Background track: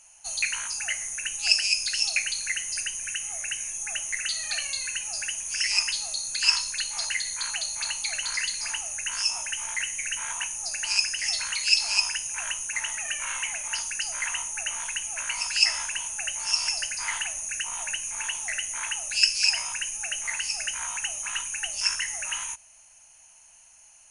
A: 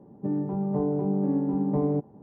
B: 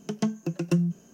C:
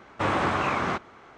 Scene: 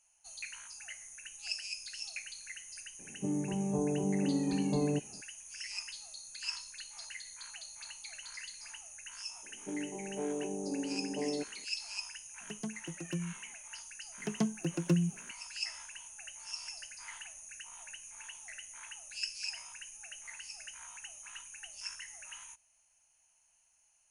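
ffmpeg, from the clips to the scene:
-filter_complex "[1:a]asplit=2[s0][s1];[2:a]asplit=2[s2][s3];[0:a]volume=0.141[s4];[s1]asuperpass=centerf=510:order=4:qfactor=0.77[s5];[s0]atrim=end=2.22,asetpts=PTS-STARTPTS,volume=0.501,afade=t=in:d=0.004:c=hsin,afade=t=out:st=2.216:d=0.004:c=hsin,adelay=2990[s6];[s5]atrim=end=2.22,asetpts=PTS-STARTPTS,volume=0.398,afade=t=in:d=0.004:c=hsin,afade=t=out:st=2.216:d=0.004:c=hsin,adelay=9430[s7];[s2]atrim=end=1.13,asetpts=PTS-STARTPTS,volume=0.2,afade=t=in:d=0.004:c=hsin,afade=t=out:st=1.126:d=0.004:c=hsin,adelay=12410[s8];[s3]atrim=end=1.13,asetpts=PTS-STARTPTS,volume=0.562,afade=t=in:d=0.004:c=hsin,afade=t=out:st=1.126:d=0.004:c=hsin,adelay=14180[s9];[s4][s6][s7][s8][s9]amix=inputs=5:normalize=0"

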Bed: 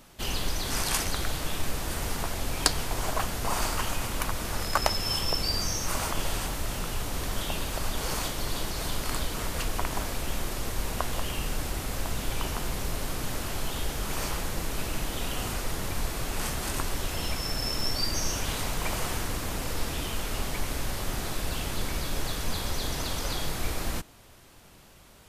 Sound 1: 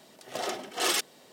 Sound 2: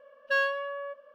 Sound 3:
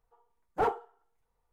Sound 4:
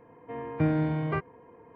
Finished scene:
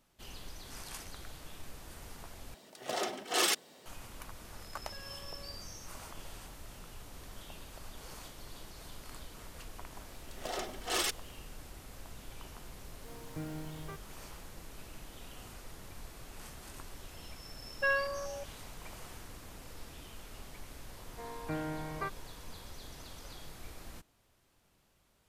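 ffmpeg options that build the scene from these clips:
-filter_complex "[1:a]asplit=2[s0][s1];[2:a]asplit=2[s2][s3];[4:a]asplit=2[s4][s5];[0:a]volume=0.133[s6];[s2]acompressor=threshold=0.0224:ratio=6:attack=3.2:release=140:knee=1:detection=peak[s7];[s4]acrusher=bits=7:mix=0:aa=0.000001[s8];[s3]afwtdn=0.0251[s9];[s5]equalizer=f=1200:w=0.39:g=13[s10];[s6]asplit=2[s11][s12];[s11]atrim=end=2.544[s13];[s0]atrim=end=1.32,asetpts=PTS-STARTPTS,volume=0.794[s14];[s12]atrim=start=3.856[s15];[s7]atrim=end=1.14,asetpts=PTS-STARTPTS,volume=0.133,afade=t=in:d=0.004:c=hsin,afade=t=out:st=1.136:d=0.004:c=hsin,adelay=4620[s16];[s1]atrim=end=1.32,asetpts=PTS-STARTPTS,volume=0.531,afade=t=in:d=0.004:c=hsin,afade=t=out:st=1.316:d=0.004:c=hsin,adelay=445410S[s17];[s8]atrim=end=1.75,asetpts=PTS-STARTPTS,volume=0.15,afade=t=in:d=0.004:c=hsin,afade=t=out:st=1.746:d=0.004:c=hsin,adelay=12760[s18];[s9]atrim=end=1.14,asetpts=PTS-STARTPTS,volume=0.668,afade=t=in:d=0.004:c=hsin,afade=t=out:st=1.136:d=0.004:c=hsin,adelay=17520[s19];[s10]atrim=end=1.75,asetpts=PTS-STARTPTS,volume=0.141,afade=t=in:d=0.004:c=hsin,afade=t=out:st=1.746:d=0.004:c=hsin,adelay=20890[s20];[s13][s14]acrossfade=d=0.004:c1=hsin:c2=hsin[s21];[s21][s15]acrossfade=d=0.004:c1=hsin:c2=hsin[s22];[s22][s16][s17][s18][s19][s20]amix=inputs=6:normalize=0"

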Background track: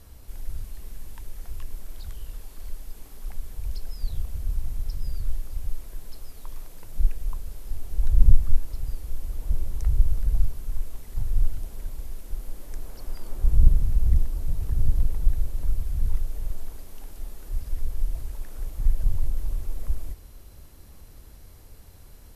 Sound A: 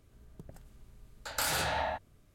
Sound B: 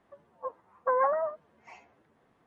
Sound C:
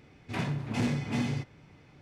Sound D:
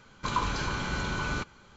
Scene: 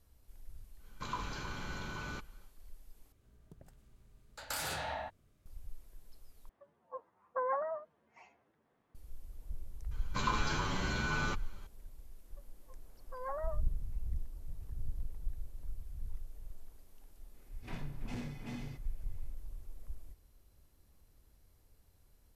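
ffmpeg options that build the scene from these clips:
-filter_complex "[4:a]asplit=2[s0][s1];[2:a]asplit=2[s2][s3];[0:a]volume=0.126[s4];[s1]asplit=2[s5][s6];[s6]adelay=8.7,afreqshift=1.4[s7];[s5][s7]amix=inputs=2:normalize=1[s8];[s3]aeval=exprs='val(0)*pow(10,-20*(0.5-0.5*cos(2*PI*0.82*n/s))/20)':c=same[s9];[s4]asplit=3[s10][s11][s12];[s10]atrim=end=3.124[s13];[1:a]atrim=end=2.34,asetpts=PTS-STARTPTS,volume=0.447[s14];[s11]atrim=start=5.456:end=6.494[s15];[s2]atrim=end=2.46,asetpts=PTS-STARTPTS,volume=0.376[s16];[s12]atrim=start=8.946[s17];[s0]atrim=end=1.76,asetpts=PTS-STARTPTS,volume=0.282,afade=t=in:d=0.1,afade=t=out:st=1.66:d=0.1,adelay=770[s18];[s8]atrim=end=1.76,asetpts=PTS-STARTPTS,volume=0.944,afade=t=in:d=0.004:c=hsin,afade=t=out:st=1.756:d=0.004:c=hsin,adelay=9910[s19];[s9]atrim=end=2.46,asetpts=PTS-STARTPTS,volume=0.282,afade=t=in:d=0.004:c=hsin,afade=t=out:st=2.456:d=0.004:c=hsin,adelay=12250[s20];[3:a]atrim=end=2.01,asetpts=PTS-STARTPTS,volume=0.211,afade=t=in:d=0.004:c=hsin,afade=t=out:st=2.006:d=0.004:c=hsin,adelay=17340[s21];[s13][s14]acrossfade=d=0.004:c1=hsin:c2=hsin[s22];[s22][s15]acrossfade=d=0.004:c1=hsin:c2=hsin[s23];[s23][s16]acrossfade=d=0.004:c1=hsin:c2=hsin[s24];[s24][s17]acrossfade=d=0.004:c1=hsin:c2=hsin[s25];[s25][s18][s19][s20][s21]amix=inputs=5:normalize=0"

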